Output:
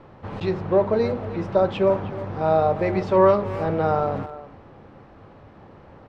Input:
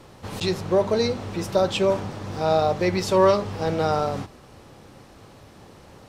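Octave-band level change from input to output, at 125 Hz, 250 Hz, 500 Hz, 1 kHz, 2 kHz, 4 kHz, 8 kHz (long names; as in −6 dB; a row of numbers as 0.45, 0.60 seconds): +1.0 dB, +0.5 dB, +1.5 dB, +1.5 dB, −2.0 dB, below −10 dB, below −20 dB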